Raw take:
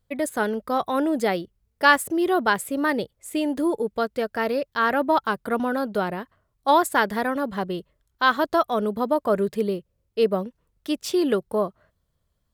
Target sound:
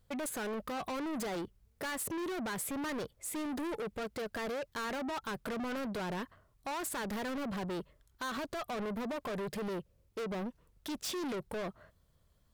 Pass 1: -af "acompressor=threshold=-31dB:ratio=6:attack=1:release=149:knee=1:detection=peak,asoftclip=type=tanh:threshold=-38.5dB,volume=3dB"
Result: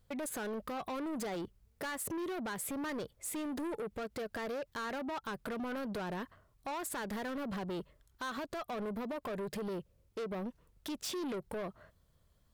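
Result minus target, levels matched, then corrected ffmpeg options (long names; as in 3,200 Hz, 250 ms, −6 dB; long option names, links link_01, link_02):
downward compressor: peak gain reduction +6 dB
-af "acompressor=threshold=-23.5dB:ratio=6:attack=1:release=149:knee=1:detection=peak,asoftclip=type=tanh:threshold=-38.5dB,volume=3dB"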